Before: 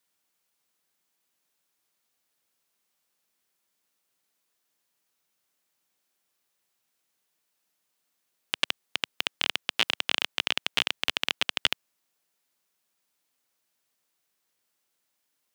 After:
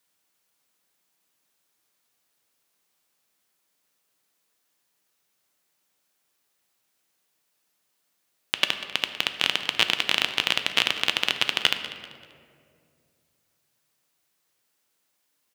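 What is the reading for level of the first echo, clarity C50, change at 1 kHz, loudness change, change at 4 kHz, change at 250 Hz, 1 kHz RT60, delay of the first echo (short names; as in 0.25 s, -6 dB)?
-16.0 dB, 8.5 dB, +4.5 dB, +4.0 dB, +4.0 dB, +4.5 dB, 1.9 s, 0.194 s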